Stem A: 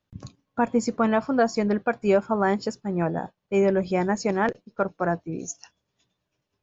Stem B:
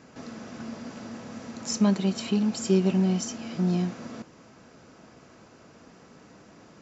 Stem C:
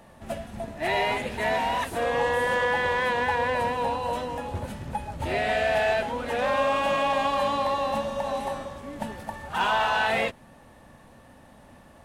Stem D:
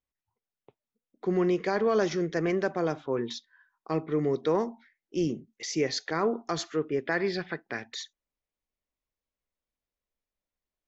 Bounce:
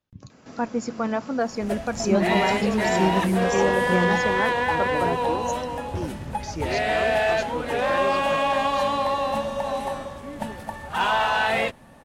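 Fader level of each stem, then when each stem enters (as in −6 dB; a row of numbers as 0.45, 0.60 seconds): −4.0, −1.0, +2.0, −5.0 decibels; 0.00, 0.30, 1.40, 0.80 seconds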